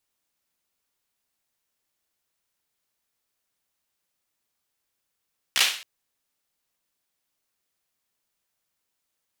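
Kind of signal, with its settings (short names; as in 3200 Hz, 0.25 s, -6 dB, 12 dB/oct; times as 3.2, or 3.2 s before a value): hand clap length 0.27 s, apart 15 ms, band 2900 Hz, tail 0.46 s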